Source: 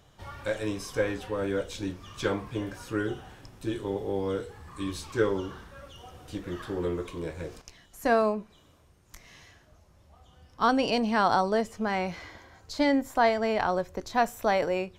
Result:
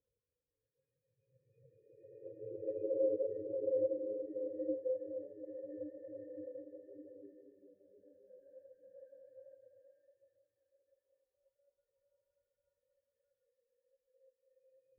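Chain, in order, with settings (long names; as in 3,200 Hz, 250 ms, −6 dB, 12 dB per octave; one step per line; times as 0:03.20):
extreme stretch with random phases 37×, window 0.10 s, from 0:02.48
formant resonators in series e
every bin expanded away from the loudest bin 2.5 to 1
level +7.5 dB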